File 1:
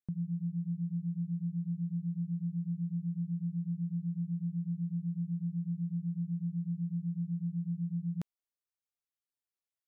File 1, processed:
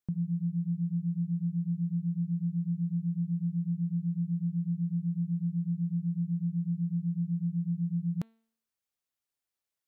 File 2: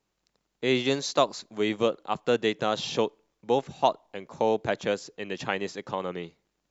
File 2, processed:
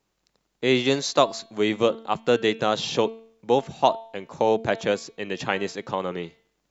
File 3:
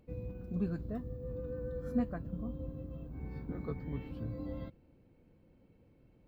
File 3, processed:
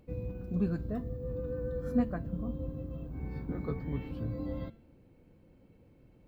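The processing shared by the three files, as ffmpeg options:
-af "bandreject=f=225.1:t=h:w=4,bandreject=f=450.2:t=h:w=4,bandreject=f=675.3:t=h:w=4,bandreject=f=900.4:t=h:w=4,bandreject=f=1.1255k:t=h:w=4,bandreject=f=1.3506k:t=h:w=4,bandreject=f=1.5757k:t=h:w=4,bandreject=f=1.8008k:t=h:w=4,bandreject=f=2.0259k:t=h:w=4,bandreject=f=2.251k:t=h:w=4,bandreject=f=2.4761k:t=h:w=4,bandreject=f=2.7012k:t=h:w=4,bandreject=f=2.9263k:t=h:w=4,bandreject=f=3.1514k:t=h:w=4,bandreject=f=3.3765k:t=h:w=4,bandreject=f=3.6016k:t=h:w=4,bandreject=f=3.8267k:t=h:w=4,bandreject=f=4.0518k:t=h:w=4,bandreject=f=4.2769k:t=h:w=4,volume=4dB"

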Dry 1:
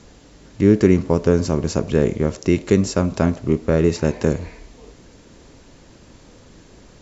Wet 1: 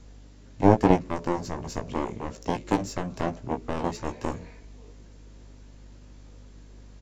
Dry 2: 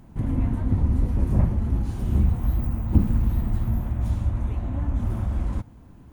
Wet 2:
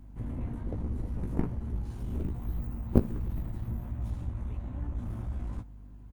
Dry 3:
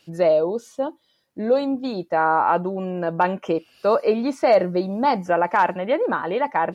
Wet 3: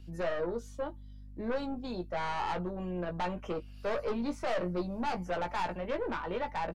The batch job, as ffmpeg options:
-filter_complex "[0:a]aeval=exprs='val(0)+0.0126*(sin(2*PI*50*n/s)+sin(2*PI*2*50*n/s)/2+sin(2*PI*3*50*n/s)/3+sin(2*PI*4*50*n/s)/4+sin(2*PI*5*50*n/s)/5)':c=same,acrossover=split=300[a][b];[b]asoftclip=type=tanh:threshold=-16dB[c];[a][c]amix=inputs=2:normalize=0,aeval=exprs='0.596*(cos(1*acos(clip(val(0)/0.596,-1,1)))-cos(1*PI/2))+0.106*(cos(2*acos(clip(val(0)/0.596,-1,1)))-cos(2*PI/2))+0.266*(cos(3*acos(clip(val(0)/0.596,-1,1)))-cos(3*PI/2))+0.0668*(cos(4*acos(clip(val(0)/0.596,-1,1)))-cos(4*PI/2))+0.00473*(cos(6*acos(clip(val(0)/0.596,-1,1)))-cos(6*PI/2))':c=same,asplit=2[d][e];[e]adelay=17,volume=-6.5dB[f];[d][f]amix=inputs=2:normalize=0,volume=-1dB"

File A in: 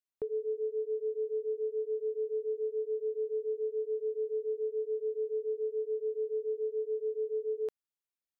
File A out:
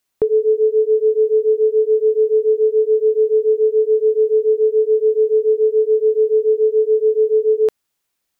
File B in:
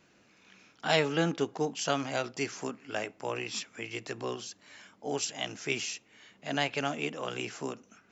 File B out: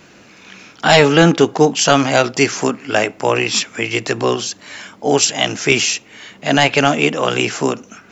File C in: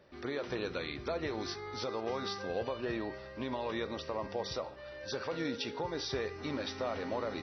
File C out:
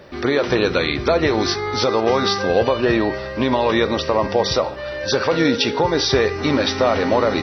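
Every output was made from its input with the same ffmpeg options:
-af "apsyclip=20.5dB,volume=-1.5dB"

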